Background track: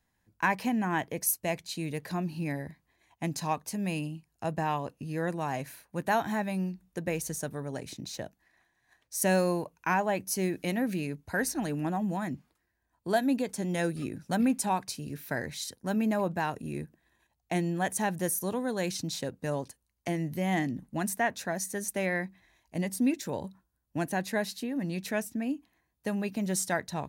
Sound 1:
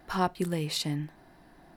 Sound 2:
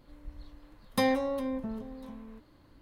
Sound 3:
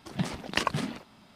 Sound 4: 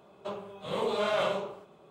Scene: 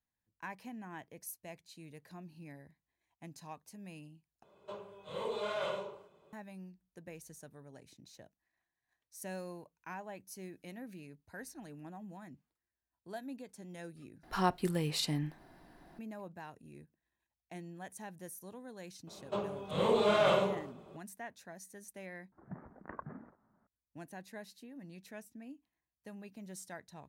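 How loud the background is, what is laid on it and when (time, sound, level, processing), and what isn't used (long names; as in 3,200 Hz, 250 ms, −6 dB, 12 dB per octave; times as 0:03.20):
background track −17.5 dB
0:04.43: overwrite with 4 −9 dB + comb filter 2 ms, depth 34%
0:14.23: overwrite with 1 −3 dB
0:19.07: mix in 4 −0.5 dB + low-shelf EQ 340 Hz +6.5 dB
0:22.32: overwrite with 3 −16 dB + Butterworth low-pass 1,700 Hz 48 dB per octave
not used: 2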